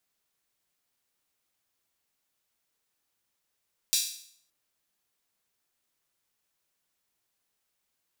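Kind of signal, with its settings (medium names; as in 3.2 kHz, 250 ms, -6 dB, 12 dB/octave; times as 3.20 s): open hi-hat length 0.57 s, high-pass 4.2 kHz, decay 0.60 s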